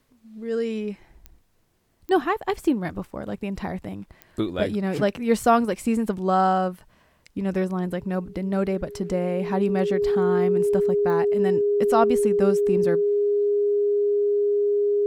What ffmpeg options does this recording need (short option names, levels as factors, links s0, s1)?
-af "adeclick=t=4,bandreject=f=410:w=30"